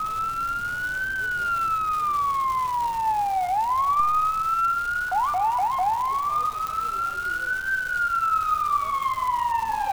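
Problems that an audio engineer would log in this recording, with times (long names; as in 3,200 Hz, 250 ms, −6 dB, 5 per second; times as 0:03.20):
surface crackle 580 per second −30 dBFS
0:06.67: click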